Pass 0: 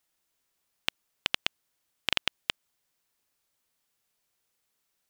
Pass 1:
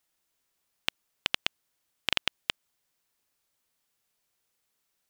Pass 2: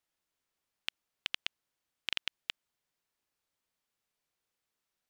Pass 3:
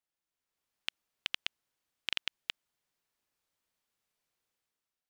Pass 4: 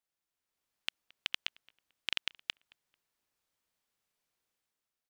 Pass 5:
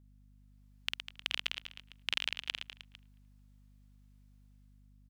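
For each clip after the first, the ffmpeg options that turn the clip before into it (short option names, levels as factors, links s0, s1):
-af anull
-filter_complex "[0:a]highshelf=f=6200:g=-7.5,acrossover=split=1600[s0][s1];[s0]alimiter=level_in=1.26:limit=0.0631:level=0:latency=1,volume=0.794[s2];[s2][s1]amix=inputs=2:normalize=0,volume=0.562"
-af "dynaudnorm=f=150:g=7:m=2.66,volume=0.422"
-filter_complex "[0:a]asplit=2[s0][s1];[s1]adelay=221,lowpass=f=2400:p=1,volume=0.0668,asplit=2[s2][s3];[s3]adelay=221,lowpass=f=2400:p=1,volume=0.32[s4];[s0][s2][s4]amix=inputs=3:normalize=0"
-af "aecho=1:1:50|115|199.5|309.4|452.2:0.631|0.398|0.251|0.158|0.1,aeval=exprs='val(0)+0.001*(sin(2*PI*50*n/s)+sin(2*PI*2*50*n/s)/2+sin(2*PI*3*50*n/s)/3+sin(2*PI*4*50*n/s)/4+sin(2*PI*5*50*n/s)/5)':c=same"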